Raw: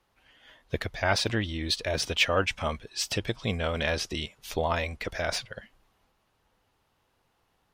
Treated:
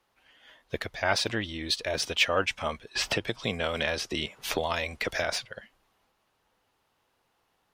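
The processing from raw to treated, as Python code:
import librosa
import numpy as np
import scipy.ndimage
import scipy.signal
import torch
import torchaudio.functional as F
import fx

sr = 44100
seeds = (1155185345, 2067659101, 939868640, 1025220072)

y = fx.low_shelf(x, sr, hz=170.0, db=-9.5)
y = fx.band_squash(y, sr, depth_pct=100, at=(2.95, 5.24))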